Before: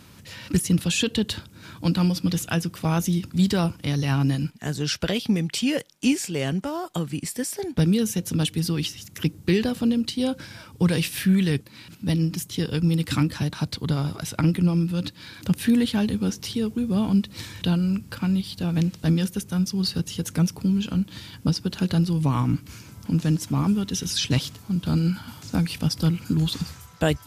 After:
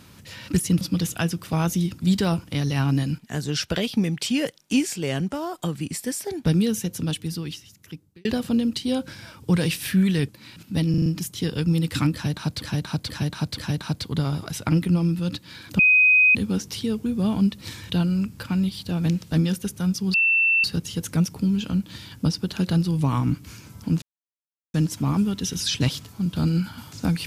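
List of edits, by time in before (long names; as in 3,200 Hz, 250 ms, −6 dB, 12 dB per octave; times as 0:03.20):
0:00.81–0:02.13: remove
0:07.93–0:09.57: fade out
0:12.22: stutter 0.04 s, 5 plays
0:13.30–0:13.78: repeat, 4 plays
0:15.51–0:16.07: beep over 2,510 Hz −12.5 dBFS
0:19.86: insert tone 2,680 Hz −16 dBFS 0.50 s
0:23.24: splice in silence 0.72 s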